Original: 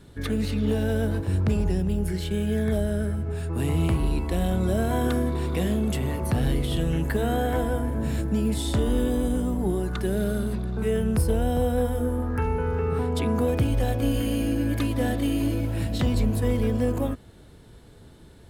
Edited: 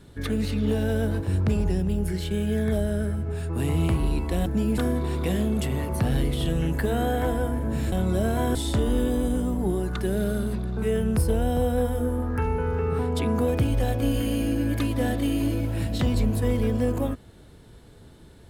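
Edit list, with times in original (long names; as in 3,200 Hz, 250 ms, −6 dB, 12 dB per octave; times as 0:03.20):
0:04.46–0:05.09: swap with 0:08.23–0:08.55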